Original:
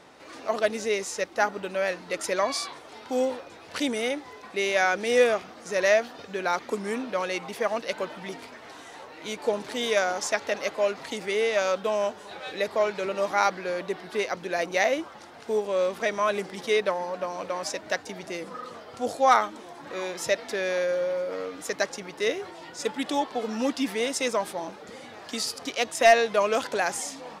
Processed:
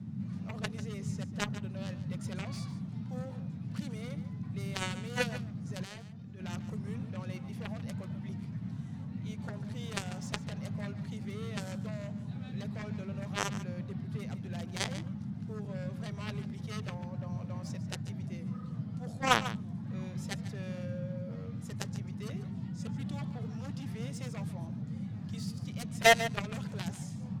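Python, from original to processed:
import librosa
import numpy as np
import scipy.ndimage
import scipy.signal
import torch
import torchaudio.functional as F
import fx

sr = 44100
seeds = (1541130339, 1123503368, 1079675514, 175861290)

p1 = fx.cheby_harmonics(x, sr, harmonics=(3,), levels_db=(-8,), full_scale_db=-8.0)
p2 = fx.dmg_noise_band(p1, sr, seeds[0], low_hz=98.0, high_hz=220.0, level_db=-36.0)
p3 = fx.level_steps(p2, sr, step_db=22, at=(5.83, 6.39), fade=0.02)
p4 = p3 + fx.echo_single(p3, sr, ms=144, db=-13.5, dry=0)
y = F.gain(torch.from_numpy(p4), -3.0).numpy()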